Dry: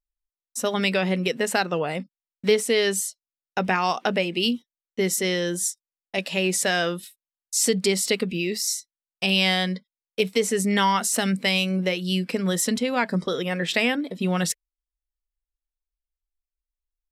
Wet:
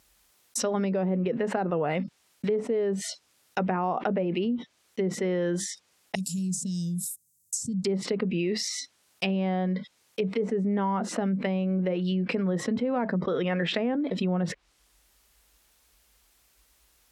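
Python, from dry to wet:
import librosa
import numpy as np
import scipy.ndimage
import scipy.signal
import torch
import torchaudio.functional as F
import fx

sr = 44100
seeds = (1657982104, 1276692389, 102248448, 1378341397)

y = fx.peak_eq(x, sr, hz=5100.0, db=12.0, octaves=0.51, at=(0.6, 1.05))
y = fx.cheby1_bandstop(y, sr, low_hz=170.0, high_hz=7300.0, order=3, at=(6.15, 7.85))
y = fx.env_lowpass_down(y, sr, base_hz=700.0, full_db=-19.0)
y = scipy.signal.sosfilt(scipy.signal.butter(4, 62.0, 'highpass', fs=sr, output='sos'), y)
y = fx.env_flatten(y, sr, amount_pct=70)
y = F.gain(torch.from_numpy(y), -7.5).numpy()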